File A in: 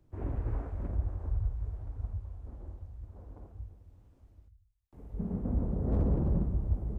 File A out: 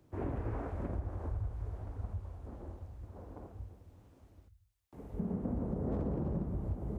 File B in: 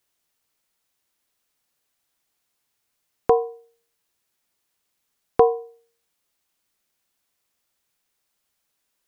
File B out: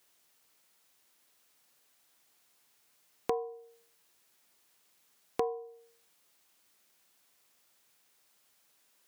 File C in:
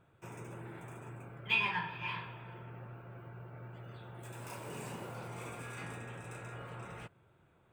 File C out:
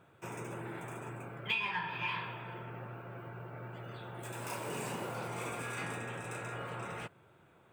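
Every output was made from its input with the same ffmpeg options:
-af "highpass=f=180:p=1,acompressor=threshold=0.0112:ratio=4,asoftclip=type=tanh:threshold=0.0841,volume=2.11"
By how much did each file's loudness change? -5.5 LU, -15.5 LU, +1.0 LU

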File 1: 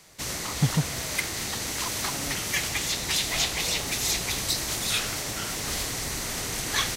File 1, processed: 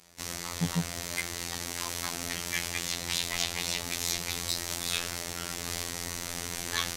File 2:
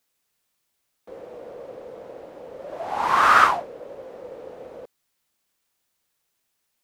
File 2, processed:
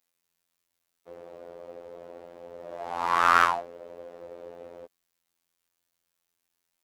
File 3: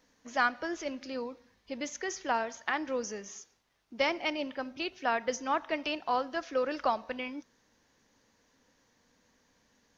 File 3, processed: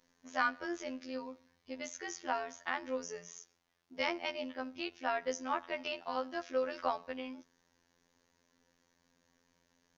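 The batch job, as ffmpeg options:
-af "afftfilt=real='hypot(re,im)*cos(PI*b)':imag='0':win_size=2048:overlap=0.75,aeval=exprs='1.06*(cos(1*acos(clip(val(0)/1.06,-1,1)))-cos(1*PI/2))+0.0376*(cos(2*acos(clip(val(0)/1.06,-1,1)))-cos(2*PI/2))+0.0075*(cos(5*acos(clip(val(0)/1.06,-1,1)))-cos(5*PI/2))':c=same,volume=0.794"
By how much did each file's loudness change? -5.0 LU, -5.0 LU, -5.0 LU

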